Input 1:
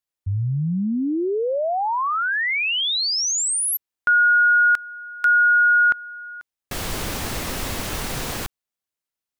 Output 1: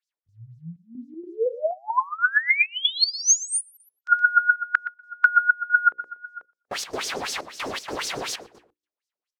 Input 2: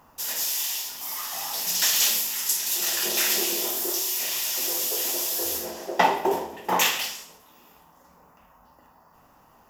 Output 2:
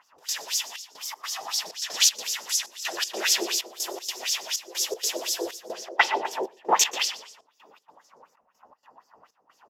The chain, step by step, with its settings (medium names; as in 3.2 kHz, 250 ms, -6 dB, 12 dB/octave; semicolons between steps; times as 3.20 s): LFO band-pass sine 4 Hz 400–6000 Hz; hum notches 60/120/180/240/300/360/420/480/540 Hz; harmonic-percussive split percussive +6 dB; feedback delay 120 ms, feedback 18%, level -16.5 dB; trance gate "xx.xxxxx.." 158 bpm -12 dB; trim +3.5 dB